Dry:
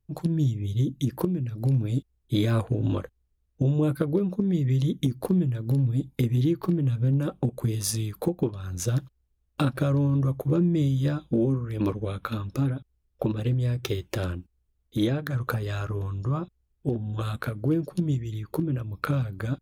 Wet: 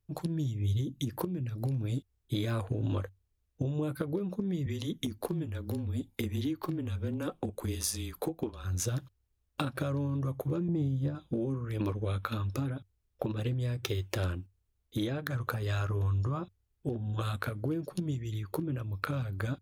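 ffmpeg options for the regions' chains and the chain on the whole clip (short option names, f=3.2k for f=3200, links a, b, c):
-filter_complex "[0:a]asettb=1/sr,asplit=3[a][b][c];[a]atrim=end=4.664[d];[b]atrim=start=4.66:end=8.65,asetpts=PTS-STARTPTS,afade=t=in:d=0.004:c=qsin,afade=t=out:st=3.986:d=0.004:c=qsin,afreqshift=-22,equalizer=f=110:t=o:w=0.81:g=-12.5[e];[c]atrim=start=8.646[f];[d][e]acrossfade=d=0.004:c1=hsin:c2=qsin[g];[g][f]acrossfade=d=0.004:c1=qsin:c2=hsin,asettb=1/sr,asplit=3[h][i][j];[h]atrim=end=10.684[k];[i]atrim=start=10.68:end=11.15,asetpts=PTS-STARTPTS,afade=t=in:d=0.004:c=qsin,afade=t=out:st=0.466:d=0.004:c=qsin,tiltshelf=f=940:g=7.5,acontrast=31,agate=range=-33dB:threshold=-9dB:ratio=3:release=100:detection=peak[l];[j]atrim=start=11.146[m];[k][l]acrossfade=d=0.004:c1=hsin:c2=qsin[n];[n][m]acrossfade=d=0.004:c1=qsin:c2=hsin,lowshelf=f=350:g=-6,acompressor=threshold=-29dB:ratio=6,equalizer=f=96:w=6.5:g=9"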